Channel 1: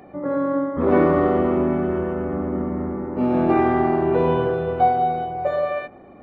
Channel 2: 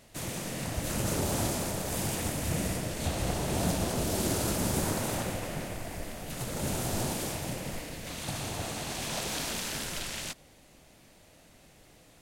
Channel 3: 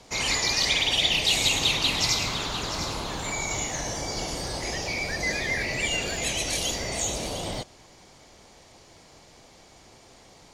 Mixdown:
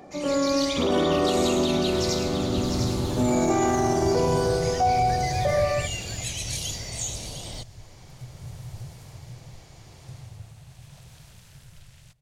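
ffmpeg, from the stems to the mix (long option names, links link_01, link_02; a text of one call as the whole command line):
ffmpeg -i stem1.wav -i stem2.wav -i stem3.wav -filter_complex "[0:a]equalizer=frequency=650:width_type=o:width=0.34:gain=3,volume=-2dB[link_01];[1:a]lowshelf=frequency=180:width_type=q:width=3:gain=13,adelay=1800,volume=-12.5dB,afade=type=out:start_time=5.65:duration=0.4:silence=0.421697[link_02];[2:a]dynaudnorm=framelen=110:gausssize=7:maxgain=13dB,acrossover=split=150|3000[link_03][link_04][link_05];[link_04]acompressor=threshold=-36dB:ratio=2[link_06];[link_03][link_06][link_05]amix=inputs=3:normalize=0,volume=-13.5dB[link_07];[link_01][link_02][link_07]amix=inputs=3:normalize=0,alimiter=limit=-14dB:level=0:latency=1:release=20" out.wav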